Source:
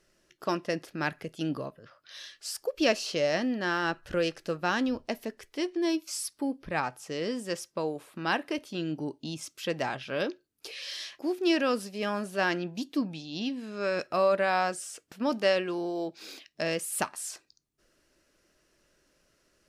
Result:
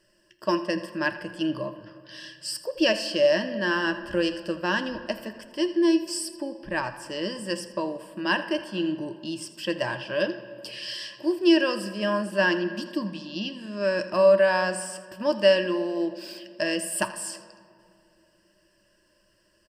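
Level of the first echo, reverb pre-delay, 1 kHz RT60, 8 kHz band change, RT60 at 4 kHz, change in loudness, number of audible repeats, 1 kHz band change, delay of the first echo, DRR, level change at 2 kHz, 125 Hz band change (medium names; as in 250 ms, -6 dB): -16.0 dB, 7 ms, 2.3 s, +2.5 dB, 1.5 s, +4.5 dB, 1, +1.0 dB, 82 ms, 8.0 dB, +5.0 dB, +1.5 dB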